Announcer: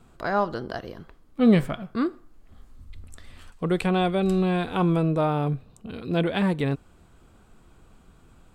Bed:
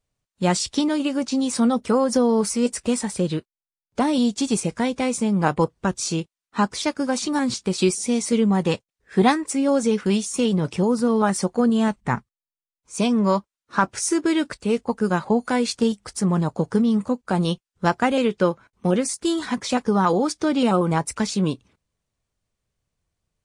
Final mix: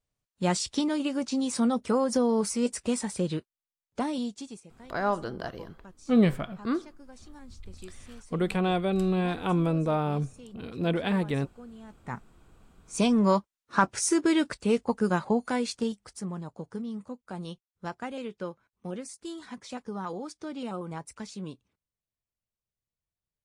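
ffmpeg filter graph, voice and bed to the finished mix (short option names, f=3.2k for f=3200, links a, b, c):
-filter_complex "[0:a]adelay=4700,volume=-3.5dB[a];[1:a]volume=18.5dB,afade=t=out:st=3.74:d=0.87:silence=0.0841395,afade=t=in:st=11.88:d=0.93:silence=0.0595662,afade=t=out:st=14.81:d=1.58:silence=0.211349[b];[a][b]amix=inputs=2:normalize=0"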